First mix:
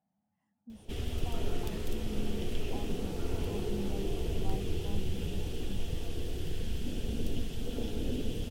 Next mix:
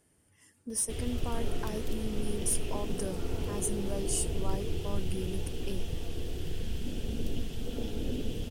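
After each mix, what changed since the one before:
speech: remove double band-pass 390 Hz, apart 1.9 oct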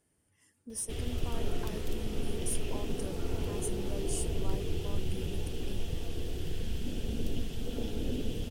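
speech -6.0 dB

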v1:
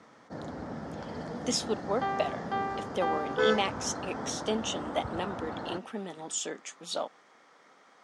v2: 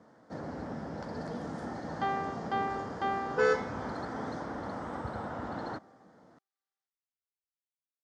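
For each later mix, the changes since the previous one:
speech: muted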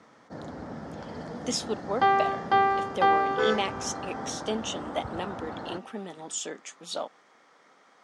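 speech: unmuted; second sound +10.5 dB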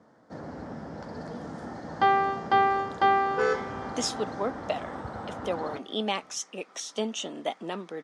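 speech: entry +2.50 s

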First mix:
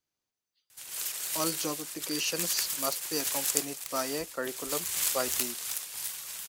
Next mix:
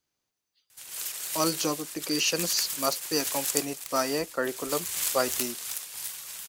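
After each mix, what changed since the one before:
speech +5.5 dB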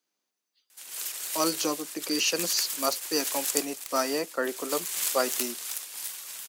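master: add HPF 200 Hz 24 dB/oct

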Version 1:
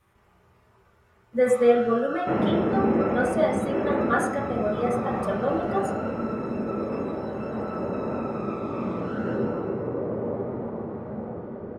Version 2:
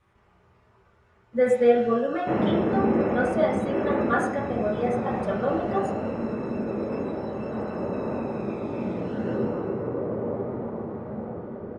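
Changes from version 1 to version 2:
speech: add air absorption 62 m; first sound: add Butterworth band-stop 1200 Hz, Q 1.8

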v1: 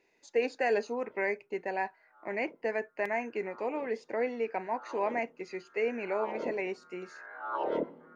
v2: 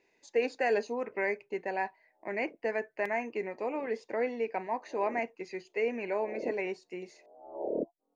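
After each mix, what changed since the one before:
background: add steep low-pass 730 Hz 48 dB/oct; reverb: off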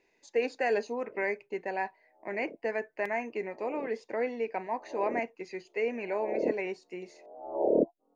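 background +8.0 dB

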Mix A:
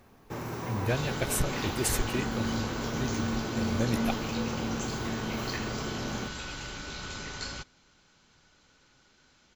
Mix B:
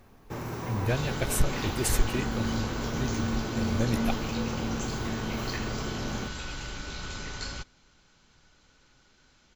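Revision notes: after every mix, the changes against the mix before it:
master: add low shelf 61 Hz +9.5 dB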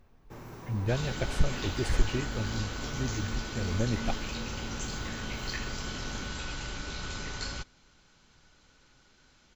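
speech: add tape spacing loss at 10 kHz 21 dB; first sound -10.0 dB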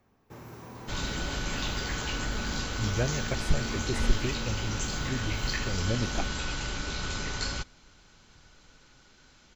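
speech: entry +2.10 s; second sound +4.0 dB; master: add high shelf 11000 Hz +3.5 dB

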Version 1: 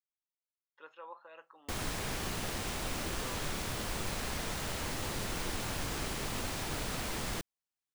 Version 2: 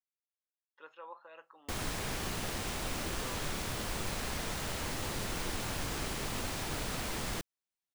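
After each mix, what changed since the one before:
none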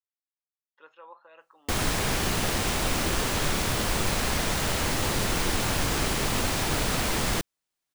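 background +10.5 dB

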